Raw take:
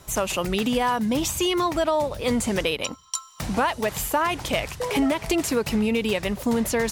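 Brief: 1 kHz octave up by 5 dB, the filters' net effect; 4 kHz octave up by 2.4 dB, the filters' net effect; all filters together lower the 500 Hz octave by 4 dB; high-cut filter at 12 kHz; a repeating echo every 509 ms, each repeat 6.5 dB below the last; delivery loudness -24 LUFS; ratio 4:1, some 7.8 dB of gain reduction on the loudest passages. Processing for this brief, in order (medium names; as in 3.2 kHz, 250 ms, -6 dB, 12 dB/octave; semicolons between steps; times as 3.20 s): low-pass 12 kHz; peaking EQ 500 Hz -7.5 dB; peaking EQ 1 kHz +7.5 dB; peaking EQ 4 kHz +3 dB; compression 4:1, threshold -24 dBFS; feedback delay 509 ms, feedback 47%, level -6.5 dB; trim +2.5 dB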